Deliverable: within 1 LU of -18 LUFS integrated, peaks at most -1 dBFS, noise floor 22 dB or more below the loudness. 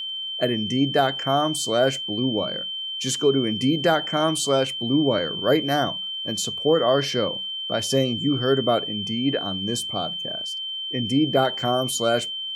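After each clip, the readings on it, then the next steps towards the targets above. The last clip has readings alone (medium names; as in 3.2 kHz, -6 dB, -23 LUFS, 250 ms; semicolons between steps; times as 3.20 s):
tick rate 36 per s; steady tone 3.1 kHz; tone level -28 dBFS; loudness -22.5 LUFS; peak level -7.0 dBFS; loudness target -18.0 LUFS
-> de-click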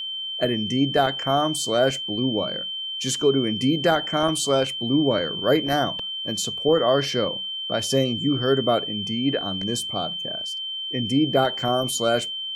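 tick rate 0.64 per s; steady tone 3.1 kHz; tone level -28 dBFS
-> band-stop 3.1 kHz, Q 30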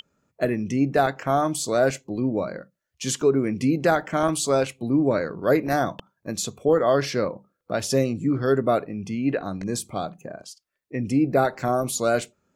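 steady tone not found; loudness -24.0 LUFS; peak level -7.5 dBFS; loudness target -18.0 LUFS
-> trim +6 dB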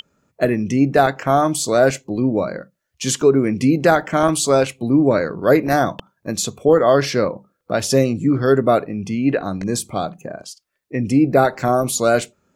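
loudness -18.0 LUFS; peak level -1.5 dBFS; noise floor -73 dBFS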